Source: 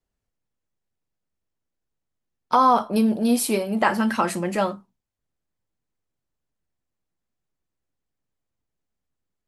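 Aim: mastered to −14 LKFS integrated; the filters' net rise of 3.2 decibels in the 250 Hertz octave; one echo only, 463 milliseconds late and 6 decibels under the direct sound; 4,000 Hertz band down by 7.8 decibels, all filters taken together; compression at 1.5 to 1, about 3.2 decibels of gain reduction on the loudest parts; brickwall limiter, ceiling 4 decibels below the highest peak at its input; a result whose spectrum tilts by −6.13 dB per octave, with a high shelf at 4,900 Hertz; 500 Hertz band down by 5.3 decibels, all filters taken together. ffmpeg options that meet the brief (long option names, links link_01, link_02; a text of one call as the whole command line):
ffmpeg -i in.wav -af "equalizer=frequency=250:width_type=o:gain=5,equalizer=frequency=500:width_type=o:gain=-8,equalizer=frequency=4000:width_type=o:gain=-7.5,highshelf=frequency=4900:gain=-6,acompressor=threshold=-22dB:ratio=1.5,alimiter=limit=-15dB:level=0:latency=1,aecho=1:1:463:0.501,volume=10dB" out.wav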